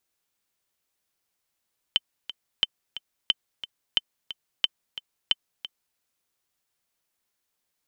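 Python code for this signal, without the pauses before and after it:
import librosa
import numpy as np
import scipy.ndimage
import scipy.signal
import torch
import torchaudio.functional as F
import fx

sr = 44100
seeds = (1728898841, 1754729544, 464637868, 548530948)

y = fx.click_track(sr, bpm=179, beats=2, bars=6, hz=3070.0, accent_db=14.0, level_db=-7.0)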